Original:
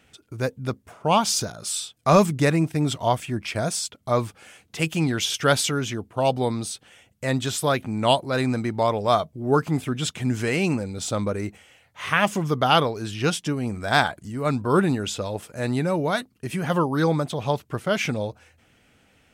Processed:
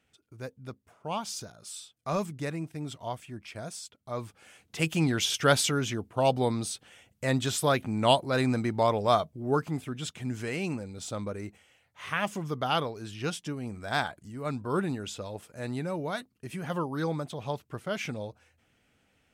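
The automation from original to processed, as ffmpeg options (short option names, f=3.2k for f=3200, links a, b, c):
-af "volume=-3dB,afade=t=in:st=4.12:d=0.79:silence=0.281838,afade=t=out:st=9.02:d=0.8:silence=0.473151"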